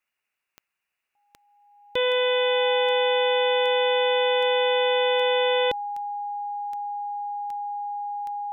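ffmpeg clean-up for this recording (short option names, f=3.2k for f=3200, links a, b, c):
-af "adeclick=t=4,bandreject=f=820:w=30,agate=range=-21dB:threshold=-75dB"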